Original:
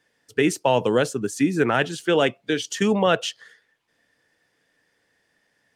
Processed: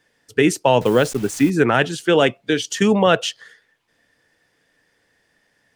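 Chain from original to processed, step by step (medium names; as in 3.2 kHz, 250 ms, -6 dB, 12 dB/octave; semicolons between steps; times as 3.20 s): 0.81–1.50 s: send-on-delta sampling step -36 dBFS; bass shelf 65 Hz +7.5 dB; trim +4 dB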